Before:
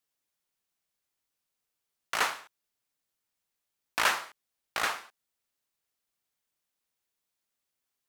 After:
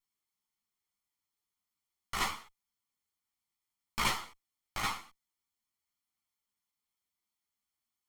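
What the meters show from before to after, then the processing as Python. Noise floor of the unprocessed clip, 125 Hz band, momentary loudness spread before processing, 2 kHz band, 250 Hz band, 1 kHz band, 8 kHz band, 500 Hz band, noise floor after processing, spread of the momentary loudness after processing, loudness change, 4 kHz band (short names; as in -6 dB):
-85 dBFS, +10.5 dB, 15 LU, -7.0 dB, +3.5 dB, -4.0 dB, -3.5 dB, -8.0 dB, under -85 dBFS, 13 LU, -4.5 dB, -3.0 dB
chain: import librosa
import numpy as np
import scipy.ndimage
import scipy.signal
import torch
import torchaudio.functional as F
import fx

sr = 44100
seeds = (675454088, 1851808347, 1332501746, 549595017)

y = fx.lower_of_two(x, sr, delay_ms=0.93)
y = fx.ensemble(y, sr)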